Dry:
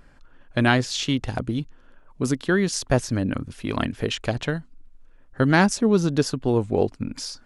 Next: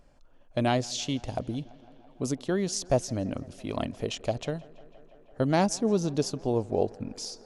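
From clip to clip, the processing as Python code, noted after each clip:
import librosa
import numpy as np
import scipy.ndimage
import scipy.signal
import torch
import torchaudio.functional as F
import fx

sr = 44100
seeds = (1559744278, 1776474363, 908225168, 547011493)

y = fx.graphic_eq_15(x, sr, hz=(630, 1600, 6300), db=(8, -9, 5))
y = fx.echo_tape(y, sr, ms=167, feedback_pct=90, wet_db=-22.0, lp_hz=4400.0, drive_db=9.0, wow_cents=14)
y = y * 10.0 ** (-7.5 / 20.0)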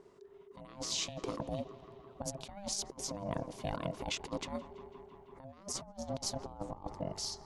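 y = x * np.sin(2.0 * np.pi * 400.0 * np.arange(len(x)) / sr)
y = fx.over_compress(y, sr, threshold_db=-36.0, ratio=-0.5)
y = y * 10.0 ** (-3.5 / 20.0)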